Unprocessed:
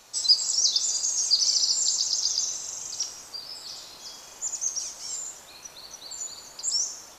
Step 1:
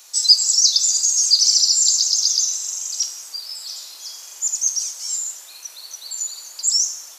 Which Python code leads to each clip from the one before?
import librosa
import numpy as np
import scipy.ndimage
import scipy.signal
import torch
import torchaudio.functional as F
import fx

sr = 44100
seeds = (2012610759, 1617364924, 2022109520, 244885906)

y = scipy.signal.sosfilt(scipy.signal.butter(4, 260.0, 'highpass', fs=sr, output='sos'), x)
y = fx.tilt_eq(y, sr, slope=4.0)
y = F.gain(torch.from_numpy(y), -2.0).numpy()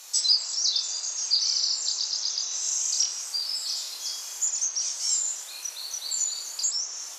y = fx.env_lowpass_down(x, sr, base_hz=2800.0, full_db=-15.5)
y = fx.doubler(y, sr, ms=28.0, db=-3.0)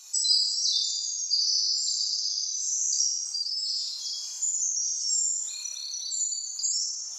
y = fx.spec_expand(x, sr, power=1.9)
y = fx.room_flutter(y, sr, wall_m=9.8, rt60_s=1.0)
y = F.gain(torch.from_numpy(y), -2.5).numpy()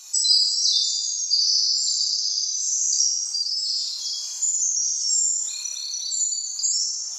y = fx.rev_plate(x, sr, seeds[0], rt60_s=2.9, hf_ratio=0.95, predelay_ms=0, drr_db=14.5)
y = F.gain(torch.from_numpy(y), 5.0).numpy()